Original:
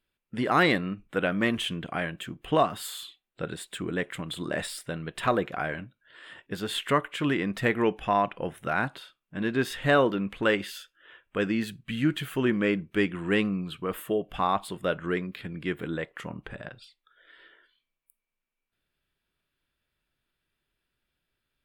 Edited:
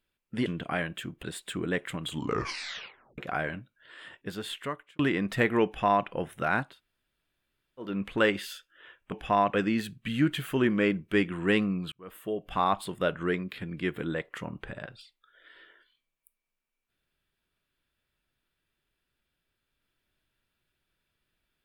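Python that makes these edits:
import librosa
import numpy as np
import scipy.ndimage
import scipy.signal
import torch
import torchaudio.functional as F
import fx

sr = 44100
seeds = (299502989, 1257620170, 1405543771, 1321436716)

y = fx.edit(x, sr, fx.cut(start_s=0.46, length_s=1.23),
    fx.cut(start_s=2.46, length_s=1.02),
    fx.tape_stop(start_s=4.28, length_s=1.15),
    fx.fade_out_span(start_s=6.26, length_s=0.98),
    fx.duplicate(start_s=7.9, length_s=0.42, to_s=11.37),
    fx.room_tone_fill(start_s=8.94, length_s=1.2, crossfade_s=0.24),
    fx.fade_in_span(start_s=13.75, length_s=0.72), tone=tone)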